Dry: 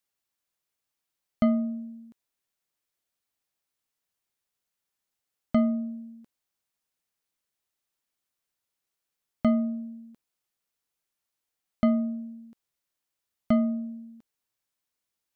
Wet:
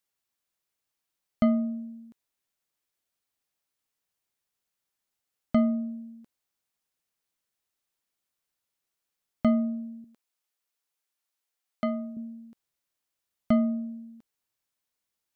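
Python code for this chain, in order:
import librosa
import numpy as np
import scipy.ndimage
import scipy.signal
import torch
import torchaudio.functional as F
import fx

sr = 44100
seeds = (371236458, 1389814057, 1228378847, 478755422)

y = fx.highpass(x, sr, hz=500.0, slope=6, at=(10.04, 12.17))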